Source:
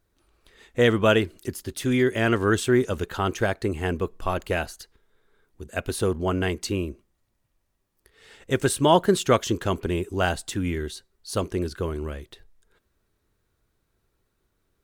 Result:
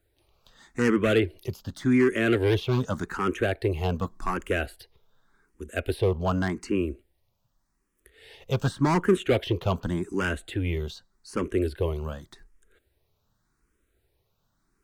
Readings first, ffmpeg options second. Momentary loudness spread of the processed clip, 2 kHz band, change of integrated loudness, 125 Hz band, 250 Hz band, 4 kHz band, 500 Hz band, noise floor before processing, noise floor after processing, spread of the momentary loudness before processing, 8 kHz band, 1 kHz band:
13 LU, -2.5 dB, -2.0 dB, 0.0 dB, -0.5 dB, -5.5 dB, -2.5 dB, -74 dBFS, -74 dBFS, 14 LU, -11.5 dB, -5.0 dB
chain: -filter_complex "[0:a]acrossover=split=280|3300[s0][s1][s2];[s1]volume=11.2,asoftclip=hard,volume=0.0891[s3];[s2]acompressor=threshold=0.00398:ratio=6[s4];[s0][s3][s4]amix=inputs=3:normalize=0,asplit=2[s5][s6];[s6]afreqshift=0.86[s7];[s5][s7]amix=inputs=2:normalize=1,volume=1.41"

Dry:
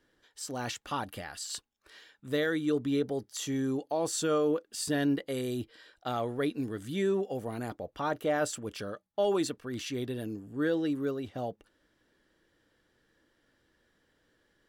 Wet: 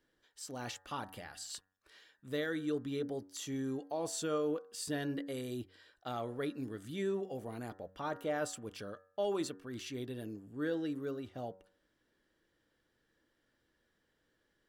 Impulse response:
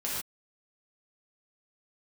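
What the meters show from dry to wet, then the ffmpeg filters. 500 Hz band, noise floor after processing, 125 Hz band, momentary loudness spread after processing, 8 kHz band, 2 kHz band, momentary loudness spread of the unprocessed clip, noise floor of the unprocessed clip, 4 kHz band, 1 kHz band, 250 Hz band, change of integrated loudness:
-6.5 dB, -79 dBFS, -6.5 dB, 10 LU, -6.5 dB, -6.5 dB, 10 LU, -73 dBFS, -6.5 dB, -7.0 dB, -7.0 dB, -7.0 dB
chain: -af "bandreject=f=94.19:t=h:w=4,bandreject=f=188.38:t=h:w=4,bandreject=f=282.57:t=h:w=4,bandreject=f=376.76:t=h:w=4,bandreject=f=470.95:t=h:w=4,bandreject=f=565.14:t=h:w=4,bandreject=f=659.33:t=h:w=4,bandreject=f=753.52:t=h:w=4,bandreject=f=847.71:t=h:w=4,bandreject=f=941.9:t=h:w=4,bandreject=f=1036.09:t=h:w=4,bandreject=f=1130.28:t=h:w=4,bandreject=f=1224.47:t=h:w=4,bandreject=f=1318.66:t=h:w=4,bandreject=f=1412.85:t=h:w=4,bandreject=f=1507.04:t=h:w=4,bandreject=f=1601.23:t=h:w=4,bandreject=f=1695.42:t=h:w=4,bandreject=f=1789.61:t=h:w=4,bandreject=f=1883.8:t=h:w=4,volume=0.473"

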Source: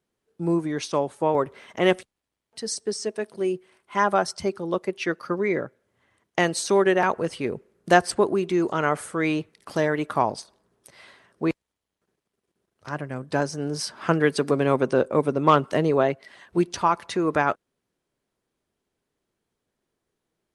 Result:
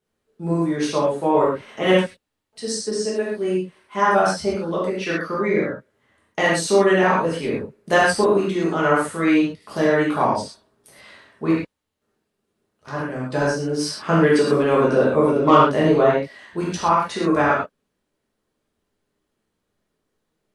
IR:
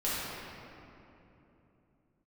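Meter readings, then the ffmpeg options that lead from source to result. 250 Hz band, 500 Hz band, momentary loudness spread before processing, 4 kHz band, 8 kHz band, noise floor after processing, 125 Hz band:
+5.0 dB, +4.5 dB, 11 LU, +4.0 dB, +2.5 dB, -77 dBFS, +4.0 dB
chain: -filter_complex "[1:a]atrim=start_sample=2205,atrim=end_sample=6174[s0];[0:a][s0]afir=irnorm=-1:irlink=0,volume=0.841"

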